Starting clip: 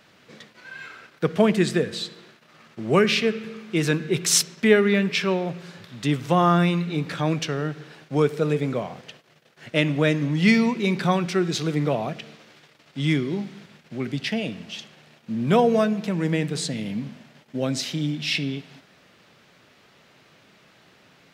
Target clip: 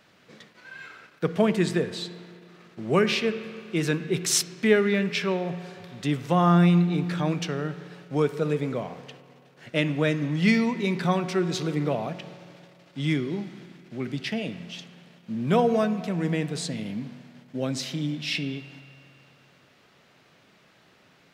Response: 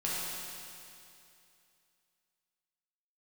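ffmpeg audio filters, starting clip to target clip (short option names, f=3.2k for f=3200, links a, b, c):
-filter_complex "[0:a]asplit=2[a][b];[1:a]atrim=start_sample=2205,lowpass=2.6k[c];[b][c]afir=irnorm=-1:irlink=0,volume=-18dB[d];[a][d]amix=inputs=2:normalize=0,volume=-4dB"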